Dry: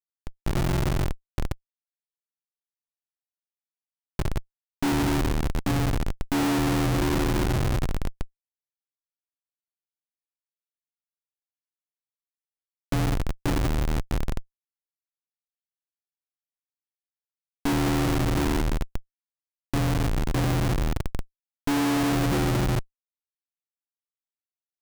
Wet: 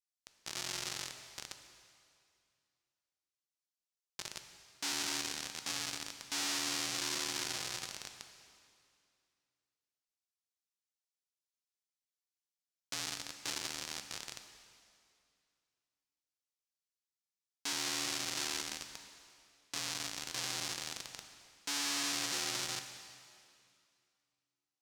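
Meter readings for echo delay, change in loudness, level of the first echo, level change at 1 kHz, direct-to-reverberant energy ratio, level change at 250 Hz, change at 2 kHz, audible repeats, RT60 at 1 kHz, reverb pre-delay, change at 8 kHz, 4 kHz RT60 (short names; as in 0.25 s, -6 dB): none, -11.0 dB, none, -14.5 dB, 6.5 dB, -24.0 dB, -7.5 dB, none, 2.3 s, 4 ms, +1.5 dB, 2.2 s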